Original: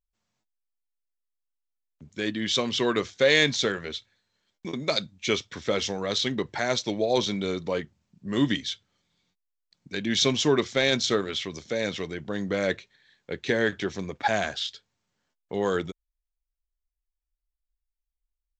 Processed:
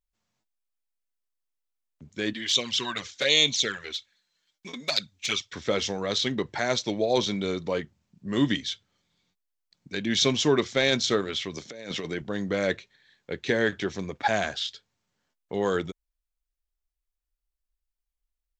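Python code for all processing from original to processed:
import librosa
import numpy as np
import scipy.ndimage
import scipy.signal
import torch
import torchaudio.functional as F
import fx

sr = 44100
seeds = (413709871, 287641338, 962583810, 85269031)

y = fx.chain(x, sr, fx.tilt_shelf(db=-6.5, hz=1200.0),
    fx.env_flanger(rest_ms=6.7, full_db=-17.0), at=(2.33, 5.53))
y = fx.chain(y, sr, fx.highpass(hz=120.0, slope=12),
    fx.over_compress(threshold_db=-33.0, ratio=-0.5), at=(11.57, 12.22))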